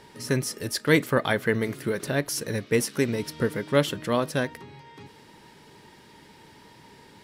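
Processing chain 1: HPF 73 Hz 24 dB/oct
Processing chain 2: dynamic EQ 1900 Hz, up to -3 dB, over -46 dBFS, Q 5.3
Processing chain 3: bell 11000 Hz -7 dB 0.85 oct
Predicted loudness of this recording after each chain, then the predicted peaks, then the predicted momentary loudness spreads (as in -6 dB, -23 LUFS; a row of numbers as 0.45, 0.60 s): -26.0, -26.5, -26.5 LUFS; -5.0, -7.0, -6.0 dBFS; 7, 7, 8 LU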